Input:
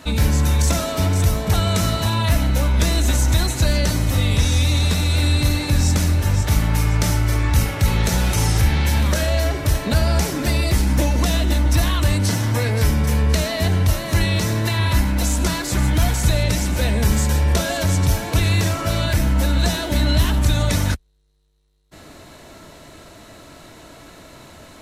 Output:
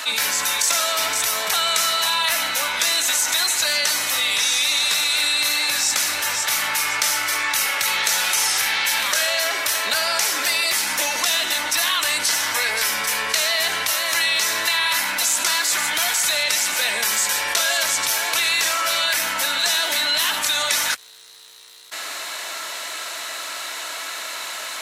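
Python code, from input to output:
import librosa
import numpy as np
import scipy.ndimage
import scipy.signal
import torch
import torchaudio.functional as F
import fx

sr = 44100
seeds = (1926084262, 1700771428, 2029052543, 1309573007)

y = scipy.signal.sosfilt(scipy.signal.butter(2, 1300.0, 'highpass', fs=sr, output='sos'), x)
y = fx.env_flatten(y, sr, amount_pct=50)
y = F.gain(torch.from_numpy(y), 5.5).numpy()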